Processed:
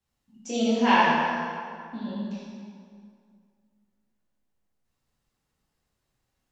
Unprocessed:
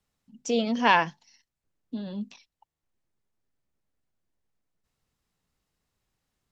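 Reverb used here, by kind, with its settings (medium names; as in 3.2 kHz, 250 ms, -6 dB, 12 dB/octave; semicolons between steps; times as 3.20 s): plate-style reverb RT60 2.2 s, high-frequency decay 0.7×, DRR -9 dB; trim -7.5 dB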